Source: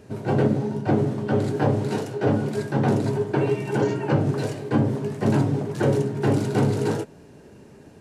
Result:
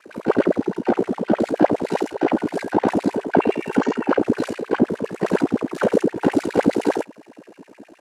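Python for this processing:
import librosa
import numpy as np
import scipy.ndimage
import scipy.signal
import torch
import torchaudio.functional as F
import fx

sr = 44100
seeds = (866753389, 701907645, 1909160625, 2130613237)

y = fx.filter_lfo_highpass(x, sr, shape='sine', hz=9.7, low_hz=240.0, high_hz=2500.0, q=5.9)
y = y * np.sin(2.0 * np.pi * 29.0 * np.arange(len(y)) / sr)
y = y * librosa.db_to_amplitude(2.5)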